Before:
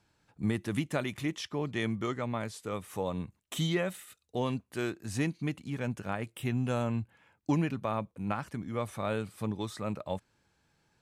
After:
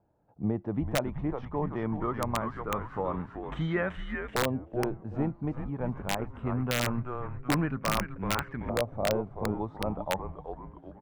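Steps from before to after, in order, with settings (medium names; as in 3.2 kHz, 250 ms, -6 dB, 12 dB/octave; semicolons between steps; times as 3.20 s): frequency-shifting echo 381 ms, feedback 49%, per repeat -130 Hz, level -6.5 dB; LFO low-pass saw up 0.23 Hz 650–1800 Hz; integer overflow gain 18 dB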